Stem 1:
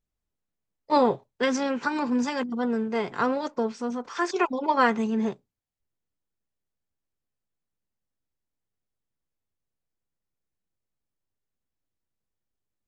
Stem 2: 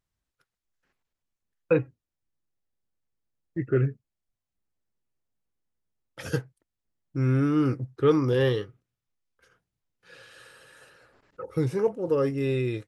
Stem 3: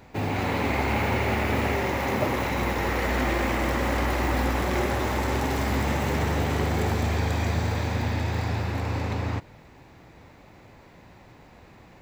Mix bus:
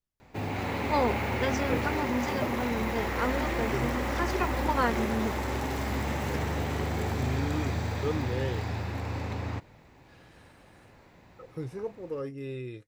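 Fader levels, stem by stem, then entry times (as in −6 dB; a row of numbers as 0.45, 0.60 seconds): −6.0, −11.0, −5.5 decibels; 0.00, 0.00, 0.20 seconds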